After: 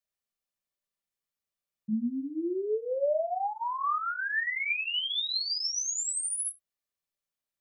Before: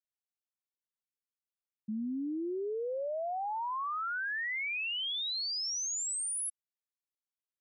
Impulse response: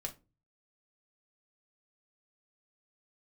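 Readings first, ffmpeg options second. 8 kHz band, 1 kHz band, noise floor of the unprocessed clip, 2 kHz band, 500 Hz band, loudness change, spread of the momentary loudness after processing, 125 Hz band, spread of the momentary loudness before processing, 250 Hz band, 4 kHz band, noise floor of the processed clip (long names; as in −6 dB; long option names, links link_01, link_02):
+3.0 dB, +4.0 dB, below −85 dBFS, +4.0 dB, +6.0 dB, +4.0 dB, 5 LU, can't be measured, 4 LU, +4.0 dB, +4.0 dB, below −85 dBFS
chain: -filter_complex "[1:a]atrim=start_sample=2205,atrim=end_sample=4410[link_01];[0:a][link_01]afir=irnorm=-1:irlink=0,volume=5.5dB"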